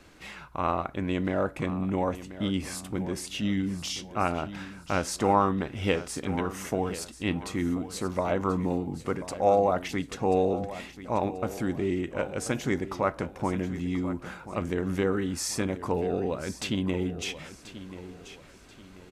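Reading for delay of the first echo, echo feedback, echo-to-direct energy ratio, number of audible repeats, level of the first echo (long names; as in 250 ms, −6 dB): 1,035 ms, 36%, −13.5 dB, 3, −14.0 dB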